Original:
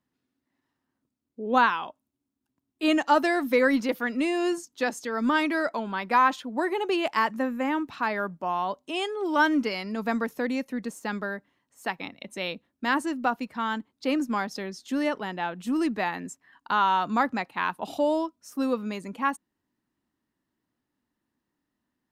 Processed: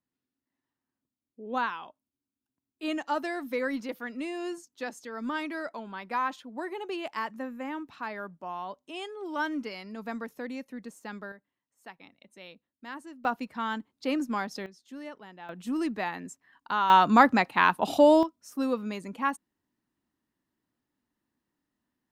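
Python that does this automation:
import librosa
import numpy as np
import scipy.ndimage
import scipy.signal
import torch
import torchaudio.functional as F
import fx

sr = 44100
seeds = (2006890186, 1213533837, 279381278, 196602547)

y = fx.gain(x, sr, db=fx.steps((0.0, -9.0), (11.32, -16.0), (13.25, -3.0), (14.66, -15.0), (15.49, -4.0), (16.9, 6.0), (18.23, -2.0)))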